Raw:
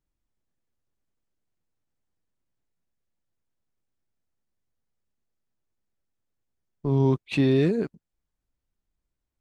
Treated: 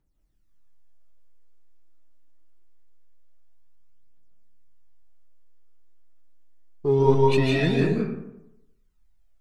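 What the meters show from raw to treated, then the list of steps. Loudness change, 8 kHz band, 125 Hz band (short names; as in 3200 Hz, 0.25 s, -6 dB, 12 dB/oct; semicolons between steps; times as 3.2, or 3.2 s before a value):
+2.0 dB, n/a, +1.5 dB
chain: phaser 0.24 Hz, delay 3.5 ms, feedback 71%; digital reverb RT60 0.87 s, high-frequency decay 0.5×, pre-delay 0.11 s, DRR -2 dB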